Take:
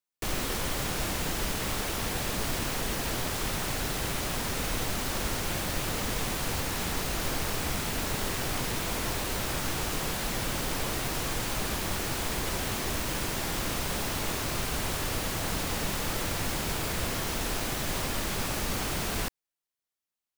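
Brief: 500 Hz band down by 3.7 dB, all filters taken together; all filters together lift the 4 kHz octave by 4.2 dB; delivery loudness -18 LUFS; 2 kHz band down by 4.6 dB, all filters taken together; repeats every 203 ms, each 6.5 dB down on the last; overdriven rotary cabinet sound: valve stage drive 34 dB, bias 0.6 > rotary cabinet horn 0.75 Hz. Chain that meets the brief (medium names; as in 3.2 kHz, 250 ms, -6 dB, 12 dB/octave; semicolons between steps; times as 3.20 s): peaking EQ 500 Hz -4.5 dB; peaking EQ 2 kHz -8 dB; peaking EQ 4 kHz +7.5 dB; feedback delay 203 ms, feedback 47%, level -6.5 dB; valve stage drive 34 dB, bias 0.6; rotary cabinet horn 0.75 Hz; trim +20.5 dB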